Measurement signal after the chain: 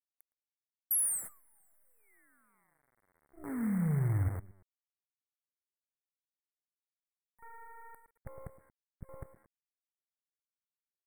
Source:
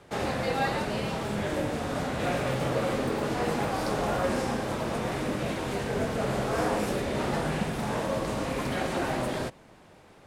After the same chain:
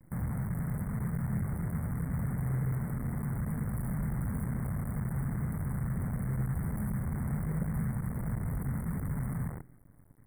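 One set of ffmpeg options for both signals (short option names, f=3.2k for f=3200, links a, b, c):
-filter_complex "[0:a]firequalizer=gain_entry='entry(160,0);entry(360,-30);entry(760,-30);entry(1900,-26);entry(3200,-25);entry(4600,-29);entry(12000,-7)':delay=0.05:min_phase=1,asoftclip=type=tanh:threshold=-24dB,equalizer=f=11k:t=o:w=1.2:g=13.5,afwtdn=0.00631,asoftclip=type=hard:threshold=-31.5dB,alimiter=level_in=12.5dB:limit=-24dB:level=0:latency=1:release=58,volume=-12.5dB,asplit=2[a][b];[b]adelay=114,lowpass=f=1.9k:p=1,volume=-9dB,asplit=2[c][d];[d]adelay=114,lowpass=f=1.9k:p=1,volume=0.3,asplit=2[e][f];[f]adelay=114,lowpass=f=1.9k:p=1,volume=0.3[g];[c][e][g]amix=inputs=3:normalize=0[h];[a][h]amix=inputs=2:normalize=0,acrusher=bits=9:dc=4:mix=0:aa=0.000001,asuperstop=centerf=4300:order=20:qfactor=0.72,volume=8.5dB"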